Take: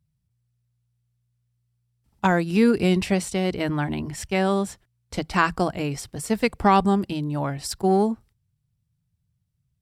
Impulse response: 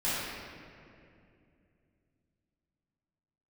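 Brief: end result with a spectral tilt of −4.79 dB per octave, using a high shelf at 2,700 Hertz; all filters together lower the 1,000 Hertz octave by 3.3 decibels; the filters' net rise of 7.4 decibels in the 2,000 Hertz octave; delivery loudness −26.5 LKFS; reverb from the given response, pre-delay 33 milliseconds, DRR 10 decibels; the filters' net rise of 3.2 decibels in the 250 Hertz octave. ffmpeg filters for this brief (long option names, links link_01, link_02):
-filter_complex "[0:a]equalizer=frequency=250:width_type=o:gain=4.5,equalizer=frequency=1000:width_type=o:gain=-8,equalizer=frequency=2000:width_type=o:gain=9,highshelf=frequency=2700:gain=7.5,asplit=2[link_01][link_02];[1:a]atrim=start_sample=2205,adelay=33[link_03];[link_02][link_03]afir=irnorm=-1:irlink=0,volume=-20dB[link_04];[link_01][link_04]amix=inputs=2:normalize=0,volume=-6.5dB"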